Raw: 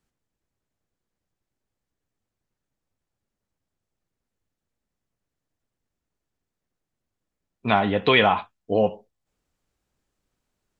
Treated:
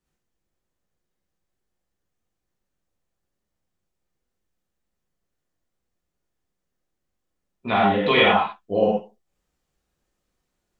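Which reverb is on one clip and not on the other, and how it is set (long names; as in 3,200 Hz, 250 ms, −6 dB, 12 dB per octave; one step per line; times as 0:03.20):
reverb whose tail is shaped and stops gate 140 ms flat, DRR −6 dB
level −5.5 dB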